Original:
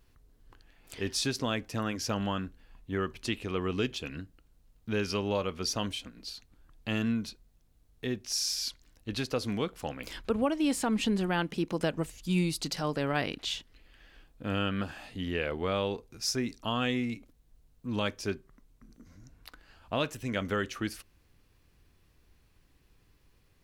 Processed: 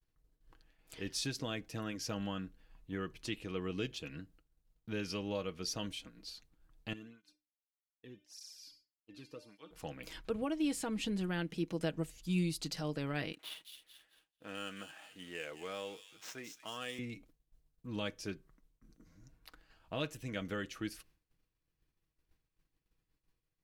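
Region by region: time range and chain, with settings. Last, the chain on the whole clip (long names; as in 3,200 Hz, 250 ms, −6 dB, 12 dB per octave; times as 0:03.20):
0:06.93–0:09.71: low-shelf EQ 310 Hz +5.5 dB + tuned comb filter 300 Hz, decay 0.62 s, mix 80% + through-zero flanger with one copy inverted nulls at 1.7 Hz, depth 1.7 ms
0:13.32–0:16.99: running median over 9 samples + high-pass filter 730 Hz 6 dB per octave + delay with a high-pass on its return 218 ms, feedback 46%, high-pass 3,900 Hz, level −3 dB
whole clip: comb filter 6.3 ms, depth 41%; downward expander −53 dBFS; dynamic equaliser 1,000 Hz, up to −5 dB, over −45 dBFS, Q 1.1; level −7 dB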